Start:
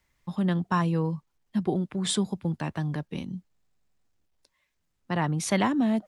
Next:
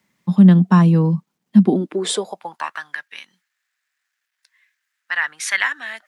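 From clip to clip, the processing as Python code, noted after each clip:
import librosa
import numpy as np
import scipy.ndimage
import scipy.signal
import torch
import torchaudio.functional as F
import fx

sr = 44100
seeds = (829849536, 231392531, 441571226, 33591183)

y = fx.filter_sweep_highpass(x, sr, from_hz=190.0, to_hz=1700.0, start_s=1.6, end_s=2.91, q=4.1)
y = y * 10.0 ** (5.5 / 20.0)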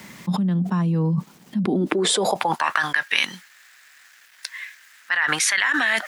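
y = fx.env_flatten(x, sr, amount_pct=100)
y = y * 10.0 ** (-14.5 / 20.0)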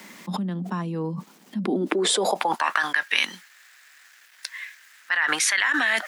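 y = scipy.signal.sosfilt(scipy.signal.butter(4, 210.0, 'highpass', fs=sr, output='sos'), x)
y = y * 10.0 ** (-1.5 / 20.0)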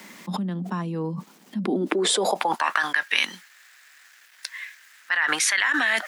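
y = x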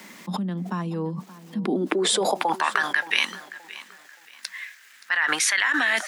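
y = fx.echo_feedback(x, sr, ms=574, feedback_pct=30, wet_db=-17.5)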